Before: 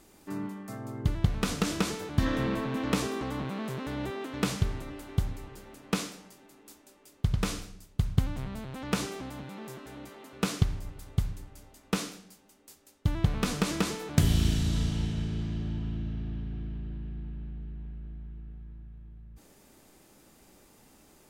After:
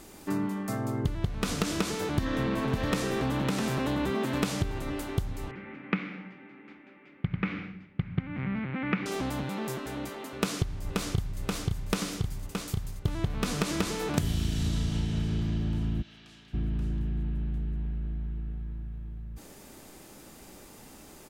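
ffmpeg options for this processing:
-filter_complex "[0:a]asettb=1/sr,asplit=3[a][b][c];[a]atrim=end=2.024[d];[b]atrim=start=2.02:end=4.79,asetpts=PTS-STARTPTS,afade=t=in:d=0.004:c=qsin,afade=t=out:st=2.766:d=0.004:c=qsin,aecho=1:1:556|655:0.501|0.316,atrim=end_sample=122157[e];[c]atrim=start=4.786[f];[d][e]acrossfade=d=0.004:c1=hsin:c2=qsin[g];[g][f]acrossfade=d=0.004:c1=qsin:c2=hsin,asettb=1/sr,asplit=3[h][i][j];[h]atrim=end=5.514[k];[i]atrim=start=5.51:end=9.06,asetpts=PTS-STARTPTS,afade=t=in:d=0.004:c=qsin,afade=t=out:st=3.546:d=0.004:c=qsin,highpass=150,equalizer=f=180:t=q:w=4:g=5,equalizer=f=440:t=q:w=4:g=-8,equalizer=f=660:t=q:w=4:g=-10,equalizer=f=990:t=q:w=4:g=-7,equalizer=f=2.2k:t=q:w=4:g=9,lowpass=f=2.4k:w=0.5412,lowpass=f=2.4k:w=1.3066[l];[j]atrim=start=9.056[m];[k][l]acrossfade=d=0.004:c1=hsin:c2=qsin[n];[n][m]acrossfade=d=0.004:c1=qsin:c2=hsin,asplit=2[o][p];[p]afade=t=in:st=10.36:d=0.01,afade=t=out:st=11.4:d=0.01,aecho=0:1:530|1060|1590|2120|2650|3180|3710|4240|4770|5300|5830|6360:0.501187|0.37589|0.281918|0.211438|0.158579|0.118934|0.0892006|0.0669004|0.0501753|0.0376315|0.0282236|0.0211677[q];[o][q]amix=inputs=2:normalize=0,asplit=3[r][s][t];[r]afade=t=out:st=16.01:d=0.02[u];[s]bandpass=f=4.4k:t=q:w=0.85,afade=t=in:st=16.01:d=0.02,afade=t=out:st=16.53:d=0.02[v];[t]afade=t=in:st=16.53:d=0.02[w];[u][v][w]amix=inputs=3:normalize=0,acompressor=threshold=-34dB:ratio=6,volume=8.5dB"

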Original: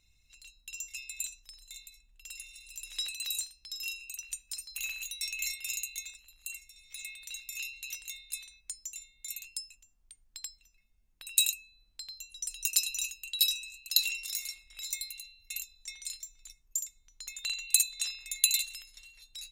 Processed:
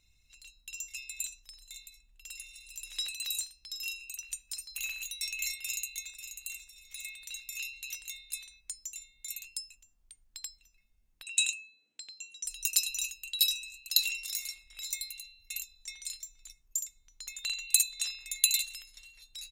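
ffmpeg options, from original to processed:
-filter_complex "[0:a]asplit=2[a][b];[b]afade=t=in:st=5.64:d=0.01,afade=t=out:st=6.55:d=0.01,aecho=0:1:540|1080:0.354813|0.053222[c];[a][c]amix=inputs=2:normalize=0,asettb=1/sr,asplit=3[d][e][f];[d]atrim=end=11.234[g];[e]atrim=start=11.23:end=12.45,asetpts=PTS-STARTPTS,afade=t=in:d=0.004:c=qsin,afade=t=out:st=1.216:d=0.004:c=qsin,highpass=f=180:w=0.5412,highpass=f=180:w=1.3066,equalizer=f=300:t=q:w=4:g=5,equalizer=f=470:t=q:w=4:g=8,equalizer=f=1.1k:t=q:w=4:g=-6,equalizer=f=2.6k:t=q:w=4:g=6,equalizer=f=4.7k:t=q:w=4:g=-10,equalizer=f=7.5k:t=q:w=4:g=4,lowpass=f=7.8k:w=0.5412,lowpass=f=7.8k:w=1.3066[h];[f]atrim=start=12.446[i];[g][h]acrossfade=d=0.004:c1=hsin:c2=qsin[j];[j][i]acrossfade=d=0.004:c1=qsin:c2=hsin"

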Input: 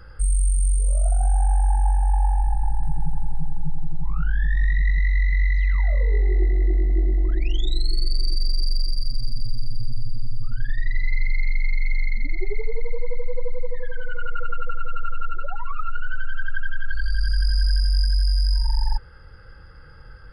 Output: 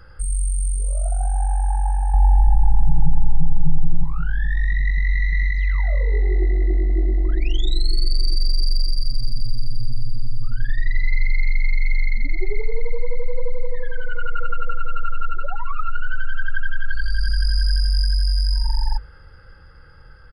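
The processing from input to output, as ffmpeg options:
-filter_complex "[0:a]asettb=1/sr,asplit=3[a][b][c];[a]atrim=end=2.144[d];[b]atrim=start=2.14:end=4.04,asetpts=PTS-STARTPTS,afade=t=in:d=0.004:c=qsin,afade=t=out:st=1.896:d=0.004:c=qsin,tiltshelf=f=970:g=7[e];[c]atrim=start=4.036[f];[d][e]acrossfade=d=0.004:c1=hsin:c2=qsin[g];[g][f]acrossfade=d=0.004:c1=qsin:c2=hsin,asplit=3[h][i][j];[h]afade=t=out:st=5.08:d=0.02[k];[i]aecho=1:1:6.7:0.65,afade=t=in:st=5.08:d=0.02,afade=t=out:st=5.5:d=0.02[l];[j]afade=t=in:st=5.5:d=0.02[m];[k][l][m]amix=inputs=3:normalize=0,bandreject=f=50:t=h:w=6,bandreject=f=100:t=h:w=6,bandreject=f=150:t=h:w=6,bandreject=f=200:t=h:w=6,bandreject=f=250:t=h:w=6,bandreject=f=300:t=h:w=6,bandreject=f=350:t=h:w=6,bandreject=f=400:t=h:w=6,bandreject=f=450:t=h:w=6,bandreject=f=500:t=h:w=6,dynaudnorm=f=270:g=13:m=3dB"

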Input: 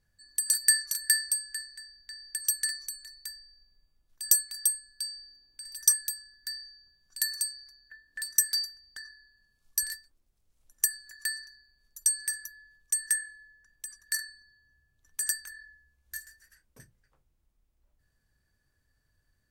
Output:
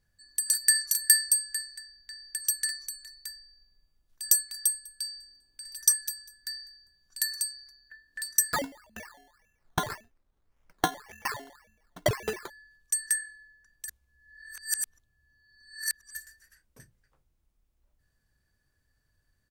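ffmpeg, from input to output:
-filter_complex "[0:a]asettb=1/sr,asplit=3[a][b][c];[a]atrim=end=0.754[d];[b]atrim=start=0.75:end=1.79,asetpts=PTS-STARTPTS,afade=t=in:d=0.004:c=qsin,afade=t=out:st=1.036:d=0.004:c=qsin,highshelf=f=5.9k:g=7[e];[c]atrim=start=1.786[f];[d][e]acrossfade=d=0.004:c1=hsin:c2=qsin[g];[g][f]acrossfade=d=0.004:c1=qsin:c2=hsin,asplit=3[h][i][j];[h]afade=t=out:st=4.71:d=0.02[k];[i]aecho=1:1:199|398:0.0708|0.0191,afade=t=in:st=4.71:d=0.02,afade=t=out:st=7.49:d=0.02[l];[j]afade=t=in:st=7.49:d=0.02[m];[k][l][m]amix=inputs=3:normalize=0,asettb=1/sr,asplit=3[n][o][p];[n]atrim=end=8.534[q];[o]atrim=start=8.53:end=12.5,asetpts=PTS-STARTPTS,afade=t=in:d=0.004:c=qsin,afade=t=out:st=3.966:d=0.004:c=qsin,acrusher=samples=14:mix=1:aa=0.000001:lfo=1:lforange=8.4:lforate=1.8[r];[p]atrim=start=12.496[s];[q][r]acrossfade=d=0.004:c1=hsin:c2=qsin[t];[t][s]acrossfade=d=0.004:c1=qsin:c2=hsin,asplit=3[u][v][w];[u]atrim=end=13.882[x];[v]atrim=start=13.878:end=16.152,asetpts=PTS-STARTPTS,areverse[y];[w]atrim=start=16.148[z];[x][y]acrossfade=d=0.004:c1=hsin:c2=hsin[aa];[aa][z]acrossfade=d=0.004:c1=hsin:c2=hsin"

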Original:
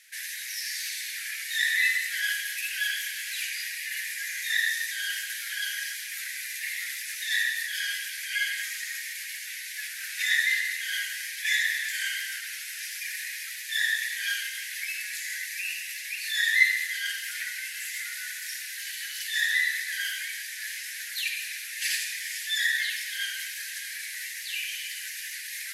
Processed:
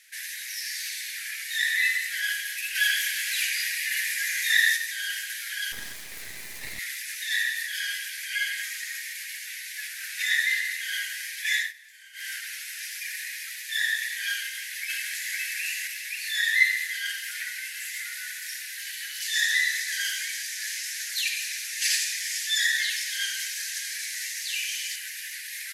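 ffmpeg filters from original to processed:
-filter_complex "[0:a]asettb=1/sr,asplit=3[a][b][c];[a]atrim=end=2.754[d];[b]atrim=start=2.75:end=4.77,asetpts=PTS-STARTPTS,afade=t=in:d=0.004:c=qsin,afade=t=out:st=2.016:d=0.004:c=qsin,acontrast=35[e];[c]atrim=start=4.766[f];[d][e]acrossfade=d=0.004:c1=hsin:c2=qsin[g];[g][f]acrossfade=d=0.004:c1=qsin:c2=hsin,asettb=1/sr,asplit=3[h][i][j];[h]atrim=end=5.724[k];[i]atrim=start=5.72:end=6.79,asetpts=PTS-STARTPTS,afade=t=in:d=0.004:c=qsin,afade=t=out:st=1.066:d=0.004:c=qsin,aeval=exprs='max(val(0),0)':c=same[l];[j]atrim=start=6.786[m];[k][l]acrossfade=d=0.004:c1=hsin:c2=qsin[n];[n][m]acrossfade=d=0.004:c1=qsin:c2=hsin,asplit=2[o][p];[p]afade=t=in:st=14.38:d=0.01,afade=t=out:st=15.36:d=0.01,aecho=0:1:510|1020|1530|2040|2550:0.891251|0.3565|0.1426|0.0570401|0.022816[q];[o][q]amix=inputs=2:normalize=0,asettb=1/sr,asplit=3[r][s][t];[r]atrim=end=19.224[u];[s]atrim=start=19.22:end=24.96,asetpts=PTS-STARTPTS,afade=t=in:d=0.004:c=qsin,afade=t=out:st=5.736:d=0.004:c=qsin,equalizer=f=6.2k:t=o:w=1.2:g=8[v];[t]atrim=start=24.956[w];[u][v]acrossfade=d=0.004:c1=hsin:c2=qsin[x];[x][w]acrossfade=d=0.004:c1=qsin:c2=hsin,asplit=3[y][z][aa];[y]atrim=end=11.73,asetpts=PTS-STARTPTS,afade=t=out:st=11.58:d=0.15:silence=0.1[ab];[z]atrim=start=11.73:end=12.13,asetpts=PTS-STARTPTS,volume=-20dB[ac];[aa]atrim=start=12.13,asetpts=PTS-STARTPTS,afade=t=in:d=0.15:silence=0.1[ad];[ab][ac][ad]concat=n=3:v=0:a=1"

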